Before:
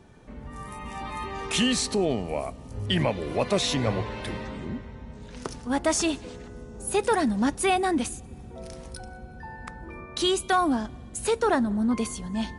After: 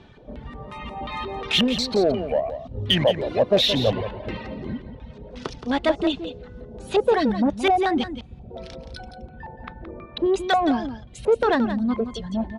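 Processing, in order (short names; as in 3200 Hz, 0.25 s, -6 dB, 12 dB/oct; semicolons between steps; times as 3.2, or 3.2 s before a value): reverb removal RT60 1 s; LFO low-pass square 2.8 Hz 620–3600 Hz; in parallel at -5 dB: soft clip -24 dBFS, distortion -8 dB; 9.29–10.26 on the sum: air absorption 260 m; echo 0.172 s -10.5 dB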